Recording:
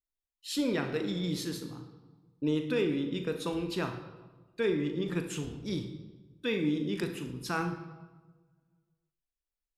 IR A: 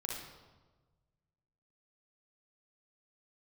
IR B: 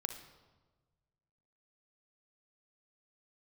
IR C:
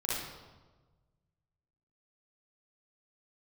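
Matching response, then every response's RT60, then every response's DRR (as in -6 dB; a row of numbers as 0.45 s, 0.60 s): B; 1.3 s, 1.3 s, 1.3 s; -3.0 dB, 6.0 dB, -8.0 dB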